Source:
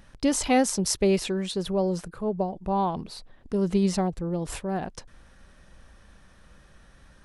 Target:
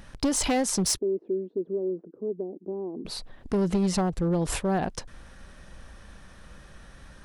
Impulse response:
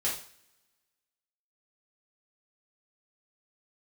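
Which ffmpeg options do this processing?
-filter_complex "[0:a]acompressor=threshold=-25dB:ratio=6,asoftclip=type=hard:threshold=-25dB,asplit=3[link_01][link_02][link_03];[link_01]afade=type=out:start_time=0.97:duration=0.02[link_04];[link_02]asuperpass=centerf=330:order=4:qfactor=2,afade=type=in:start_time=0.97:duration=0.02,afade=type=out:start_time=3.04:duration=0.02[link_05];[link_03]afade=type=in:start_time=3.04:duration=0.02[link_06];[link_04][link_05][link_06]amix=inputs=3:normalize=0,volume=5.5dB"

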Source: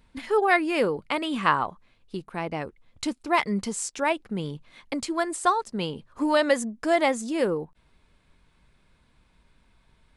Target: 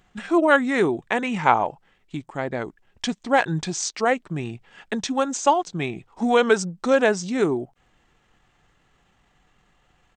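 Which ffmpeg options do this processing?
ffmpeg -i in.wav -af "asetrate=35002,aresample=44100,atempo=1.25992,lowshelf=frequency=120:gain=-9.5,volume=4.5dB" out.wav

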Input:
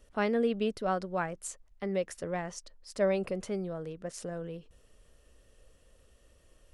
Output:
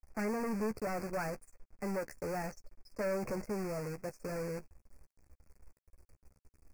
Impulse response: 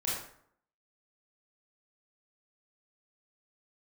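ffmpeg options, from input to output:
-filter_complex "[0:a]afftdn=noise_reduction=14:noise_floor=-46,lowshelf=frequency=120:gain=5.5,acrossover=split=120|1100|2600[link_01][link_02][link_03][link_04];[link_04]acompressor=threshold=-59dB:ratio=16[link_05];[link_01][link_02][link_03][link_05]amix=inputs=4:normalize=0,asoftclip=type=tanh:threshold=-25.5dB,acrusher=bits=8:dc=4:mix=0:aa=0.000001,asoftclip=type=hard:threshold=-33dB,asuperstop=centerf=3400:order=12:qfactor=1.8,asplit=2[link_06][link_07];[link_07]adelay=14,volume=-10dB[link_08];[link_06][link_08]amix=inputs=2:normalize=0"

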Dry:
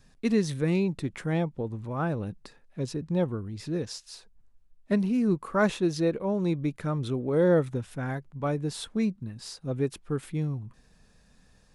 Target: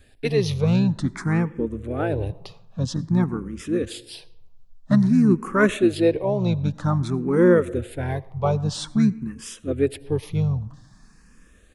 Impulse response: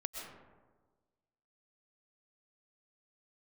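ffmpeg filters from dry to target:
-filter_complex "[0:a]asplit=2[link_01][link_02];[link_02]asetrate=29433,aresample=44100,atempo=1.49831,volume=-7dB[link_03];[link_01][link_03]amix=inputs=2:normalize=0,asplit=2[link_04][link_05];[1:a]atrim=start_sample=2205,asetrate=66150,aresample=44100[link_06];[link_05][link_06]afir=irnorm=-1:irlink=0,volume=-13dB[link_07];[link_04][link_07]amix=inputs=2:normalize=0,asplit=2[link_08][link_09];[link_09]afreqshift=0.51[link_10];[link_08][link_10]amix=inputs=2:normalize=1,volume=7.5dB"

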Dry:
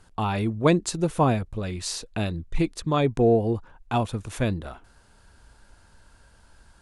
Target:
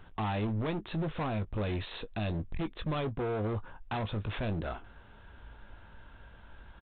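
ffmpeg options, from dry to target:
ffmpeg -i in.wav -filter_complex "[0:a]acompressor=threshold=-25dB:ratio=6,alimiter=limit=-23.5dB:level=0:latency=1:release=21,aresample=8000,asoftclip=type=hard:threshold=-33dB,aresample=44100,asplit=2[link_01][link_02];[link_02]adelay=19,volume=-11dB[link_03];[link_01][link_03]amix=inputs=2:normalize=0,volume=2.5dB" out.wav

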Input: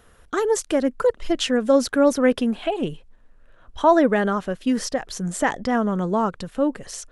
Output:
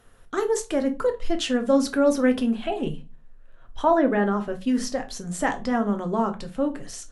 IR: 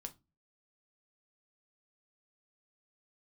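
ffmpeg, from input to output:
-filter_complex "[0:a]asettb=1/sr,asplit=3[link_01][link_02][link_03];[link_01]atrim=end=3.834[link_04];[link_02]atrim=start=3.83:end=4.53,asetpts=PTS-STARTPTS,afade=type=in:duration=0.004:curve=qsin,afade=type=out:start_time=0.696:duration=0.004:curve=qsin,acrossover=split=3000[link_05][link_06];[link_06]acompressor=threshold=-53dB:ratio=4:attack=1:release=60[link_07];[link_05][link_07]amix=inputs=2:normalize=0[link_08];[link_03]atrim=start=4.526[link_09];[link_04][link_08]acrossfade=duration=0.004:curve1=hsin:curve2=qsin[link_10];[link_10][link_09]acrossfade=duration=0.004:curve1=qsin:curve2=hsin[link_11];[1:a]atrim=start_sample=2205,asetrate=35280,aresample=44100[link_12];[link_11][link_12]afir=irnorm=-1:irlink=0"

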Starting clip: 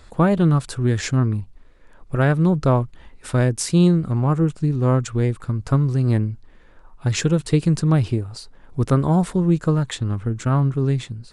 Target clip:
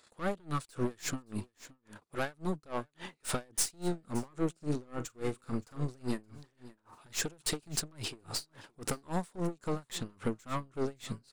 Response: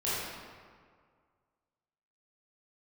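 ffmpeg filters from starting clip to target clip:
-filter_complex "[0:a]agate=range=-21dB:threshold=-44dB:ratio=16:detection=peak,highpass=250,highshelf=frequency=3200:gain=9.5,acompressor=threshold=-29dB:ratio=6,aeval=exprs='(tanh(50.1*val(0)+0.5)-tanh(0.5))/50.1':channel_layout=same,asettb=1/sr,asplit=3[link_01][link_02][link_03];[link_01]atrim=end=4.554[link_04];[link_02]atrim=start=4.55:end=7.14,asetpts=PTS-STARTPTS,afade=type=in:duration=0.004:curve=qsin,afade=type=out:start_time=2.586:duration=0.004:curve=qsin,asplit=2[link_05][link_06];[link_06]adelay=40,volume=-11.5dB[link_07];[link_05][link_07]amix=inputs=2:normalize=0,atrim=end_sample=114219[link_08];[link_03]atrim=start=7.136[link_09];[link_04][link_08]acrossfade=duration=0.004:curve1=hsin:curve2=qsin[link_10];[link_10][link_09]acrossfade=duration=0.004:curve1=qsin:curve2=hsin,aecho=1:1:571:0.119,aeval=exprs='val(0)*pow(10,-30*(0.5-0.5*cos(2*PI*3.6*n/s))/20)':channel_layout=same,volume=9dB"

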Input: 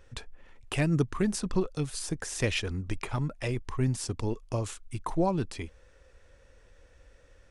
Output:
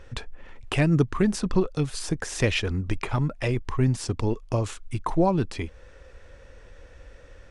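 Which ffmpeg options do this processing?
ffmpeg -i in.wav -filter_complex "[0:a]highshelf=frequency=7400:gain=-11.5,asplit=2[link_01][link_02];[link_02]acompressor=threshold=-43dB:ratio=6,volume=-1.5dB[link_03];[link_01][link_03]amix=inputs=2:normalize=0,volume=4.5dB" out.wav

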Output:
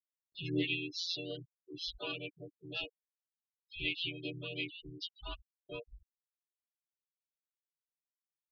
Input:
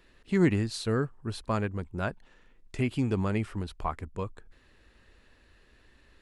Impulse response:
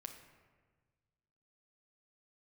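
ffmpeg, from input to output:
-filter_complex "[0:a]afftfilt=real='hypot(re,im)*cos(PI*b)':imag='0':win_size=1024:overlap=0.75,lowshelf=frequency=480:width_type=q:width=3:gain=-11.5,agate=range=-33dB:threshold=-59dB:ratio=3:detection=peak,asplit=2[link_01][link_02];[link_02]aeval=exprs='0.0178*(abs(mod(val(0)/0.0178+3,4)-2)-1)':channel_layout=same,volume=-7.5dB[link_03];[link_01][link_03]amix=inputs=2:normalize=0,firequalizer=gain_entry='entry(100,0);entry(190,-9);entry(270,13);entry(690,-22);entry(1000,-18);entry(1800,-16);entry(2800,11);entry(5400,-7);entry(7700,-22)':delay=0.05:min_phase=1,atempo=0.73,afreqshift=-46,afftfilt=real='re*gte(hypot(re,im),0.02)':imag='im*gte(hypot(re,im),0.02)':win_size=1024:overlap=0.75,asplit=3[link_04][link_05][link_06];[link_05]asetrate=55563,aresample=44100,atempo=0.793701,volume=-5dB[link_07];[link_06]asetrate=66075,aresample=44100,atempo=0.66742,volume=-18dB[link_08];[link_04][link_07][link_08]amix=inputs=3:normalize=0,acrossover=split=480[link_09][link_10];[link_09]acompressor=mode=upward:threshold=-48dB:ratio=2.5[link_11];[link_11][link_10]amix=inputs=2:normalize=0,volume=2dB"

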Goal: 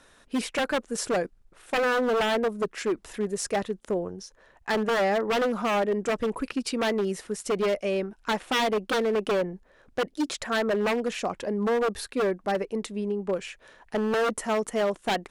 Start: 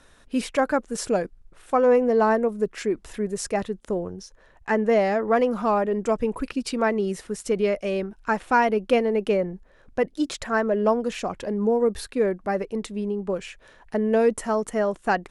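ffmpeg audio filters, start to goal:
ffmpeg -i in.wav -af "aeval=exprs='0.119*(abs(mod(val(0)/0.119+3,4)-2)-1)':channel_layout=same,lowshelf=frequency=130:gain=-9" out.wav

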